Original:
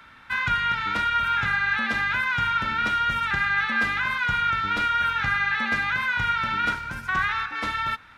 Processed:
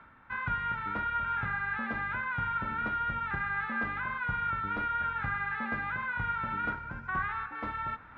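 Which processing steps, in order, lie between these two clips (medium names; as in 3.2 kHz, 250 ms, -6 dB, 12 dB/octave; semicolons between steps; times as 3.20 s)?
reverse; upward compressor, threshold -35 dBFS; reverse; low-pass 1.3 kHz 12 dB/octave; trim -4.5 dB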